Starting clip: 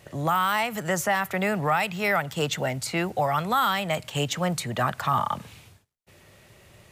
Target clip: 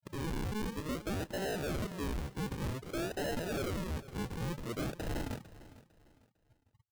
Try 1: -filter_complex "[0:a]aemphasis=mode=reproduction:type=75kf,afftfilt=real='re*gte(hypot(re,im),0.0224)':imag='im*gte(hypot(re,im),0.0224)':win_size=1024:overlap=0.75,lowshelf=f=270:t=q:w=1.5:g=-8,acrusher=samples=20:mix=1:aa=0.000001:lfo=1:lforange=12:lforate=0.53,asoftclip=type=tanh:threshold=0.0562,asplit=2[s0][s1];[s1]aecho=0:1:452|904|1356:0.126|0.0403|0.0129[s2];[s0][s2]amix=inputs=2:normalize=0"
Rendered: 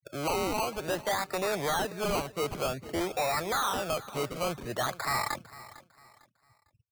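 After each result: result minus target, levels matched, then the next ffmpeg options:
decimation with a swept rate: distortion -32 dB; saturation: distortion -5 dB
-filter_complex "[0:a]aemphasis=mode=reproduction:type=75kf,afftfilt=real='re*gte(hypot(re,im),0.0224)':imag='im*gte(hypot(re,im),0.0224)':win_size=1024:overlap=0.75,lowshelf=f=270:t=q:w=1.5:g=-8,acrusher=samples=54:mix=1:aa=0.000001:lfo=1:lforange=32.4:lforate=0.53,asoftclip=type=tanh:threshold=0.0562,asplit=2[s0][s1];[s1]aecho=0:1:452|904|1356:0.126|0.0403|0.0129[s2];[s0][s2]amix=inputs=2:normalize=0"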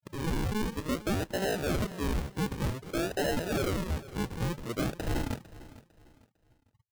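saturation: distortion -5 dB
-filter_complex "[0:a]aemphasis=mode=reproduction:type=75kf,afftfilt=real='re*gte(hypot(re,im),0.0224)':imag='im*gte(hypot(re,im),0.0224)':win_size=1024:overlap=0.75,lowshelf=f=270:t=q:w=1.5:g=-8,acrusher=samples=54:mix=1:aa=0.000001:lfo=1:lforange=32.4:lforate=0.53,asoftclip=type=tanh:threshold=0.0211,asplit=2[s0][s1];[s1]aecho=0:1:452|904|1356:0.126|0.0403|0.0129[s2];[s0][s2]amix=inputs=2:normalize=0"

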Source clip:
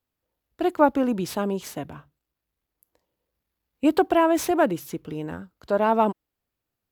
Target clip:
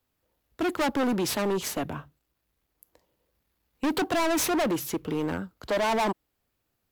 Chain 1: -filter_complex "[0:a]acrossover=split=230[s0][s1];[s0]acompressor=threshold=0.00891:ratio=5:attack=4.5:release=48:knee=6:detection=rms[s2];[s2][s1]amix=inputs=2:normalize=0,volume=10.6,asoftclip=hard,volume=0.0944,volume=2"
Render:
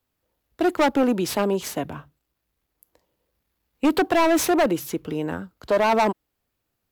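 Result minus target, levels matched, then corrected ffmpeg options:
overload inside the chain: distortion -5 dB
-filter_complex "[0:a]acrossover=split=230[s0][s1];[s0]acompressor=threshold=0.00891:ratio=5:attack=4.5:release=48:knee=6:detection=rms[s2];[s2][s1]amix=inputs=2:normalize=0,volume=28.2,asoftclip=hard,volume=0.0355,volume=2"

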